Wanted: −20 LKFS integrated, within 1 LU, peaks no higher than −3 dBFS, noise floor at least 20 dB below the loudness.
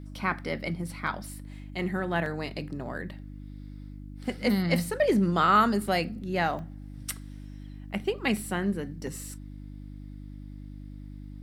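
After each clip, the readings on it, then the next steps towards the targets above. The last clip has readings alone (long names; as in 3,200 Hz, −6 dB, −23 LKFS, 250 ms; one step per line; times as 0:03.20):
number of dropouts 5; longest dropout 1.5 ms; mains hum 50 Hz; hum harmonics up to 300 Hz; level of the hum −40 dBFS; integrated loudness −29.0 LKFS; sample peak −10.0 dBFS; target loudness −20.0 LKFS
→ repair the gap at 0:01.07/0:02.26/0:05.88/0:06.59/0:09.07, 1.5 ms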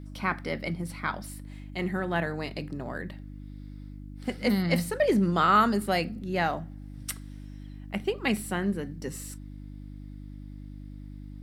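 number of dropouts 0; mains hum 50 Hz; hum harmonics up to 300 Hz; level of the hum −40 dBFS
→ hum removal 50 Hz, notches 6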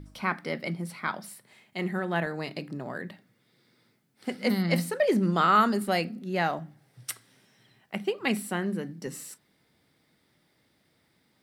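mains hum none found; integrated loudness −29.0 LKFS; sample peak −10.0 dBFS; target loudness −20.0 LKFS
→ level +9 dB
brickwall limiter −3 dBFS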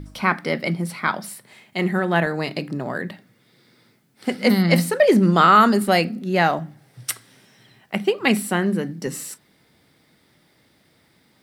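integrated loudness −20.5 LKFS; sample peak −3.0 dBFS; background noise floor −61 dBFS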